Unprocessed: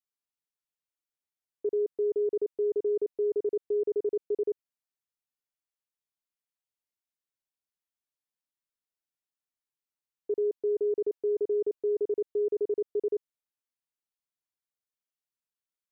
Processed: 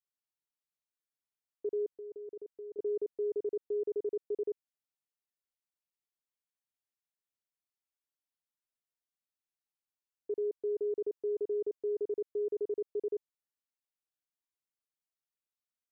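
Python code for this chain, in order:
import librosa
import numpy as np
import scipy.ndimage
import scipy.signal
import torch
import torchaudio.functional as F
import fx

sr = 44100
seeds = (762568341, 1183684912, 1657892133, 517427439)

y = fx.level_steps(x, sr, step_db=19, at=(1.94, 2.79))
y = y * 10.0 ** (-5.5 / 20.0)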